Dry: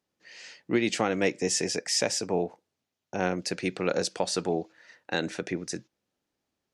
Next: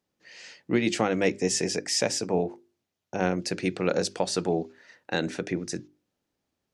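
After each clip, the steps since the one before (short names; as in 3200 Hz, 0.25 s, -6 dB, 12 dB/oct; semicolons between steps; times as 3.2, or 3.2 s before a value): low shelf 370 Hz +5 dB; notches 50/100/150/200/250/300/350/400 Hz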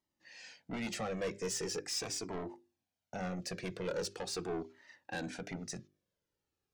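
soft clip -25.5 dBFS, distortion -8 dB; cascading flanger falling 0.42 Hz; gain -2.5 dB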